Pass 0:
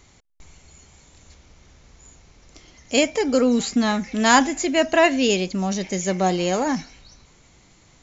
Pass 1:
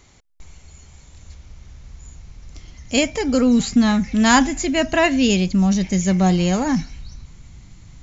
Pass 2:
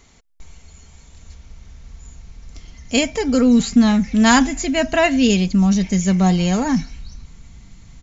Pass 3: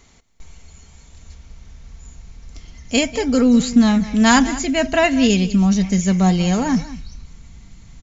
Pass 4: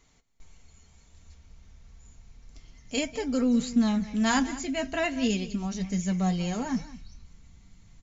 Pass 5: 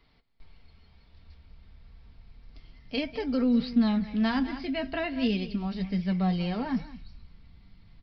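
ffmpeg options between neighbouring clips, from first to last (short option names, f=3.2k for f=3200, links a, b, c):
-af "asubboost=boost=6.5:cutoff=170,volume=1dB"
-af "aecho=1:1:4.4:0.33"
-af "aecho=1:1:194:0.158"
-af "flanger=delay=6.3:depth=5:regen=-48:speed=0.33:shape=triangular,volume=-7.5dB"
-filter_complex "[0:a]acrossover=split=350[a][b];[b]acompressor=threshold=-28dB:ratio=6[c];[a][c]amix=inputs=2:normalize=0,aresample=11025,aresample=44100"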